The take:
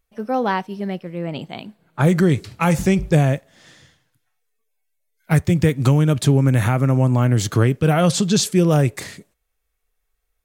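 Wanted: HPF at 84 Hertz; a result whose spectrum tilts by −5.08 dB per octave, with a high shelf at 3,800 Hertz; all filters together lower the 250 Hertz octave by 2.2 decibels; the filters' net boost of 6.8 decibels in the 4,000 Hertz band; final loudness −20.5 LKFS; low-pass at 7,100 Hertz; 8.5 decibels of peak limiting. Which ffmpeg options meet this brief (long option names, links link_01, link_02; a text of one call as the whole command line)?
ffmpeg -i in.wav -af "highpass=84,lowpass=7100,equalizer=frequency=250:width_type=o:gain=-3.5,highshelf=frequency=3800:gain=7.5,equalizer=frequency=4000:width_type=o:gain=4,volume=2.5dB,alimiter=limit=-9dB:level=0:latency=1" out.wav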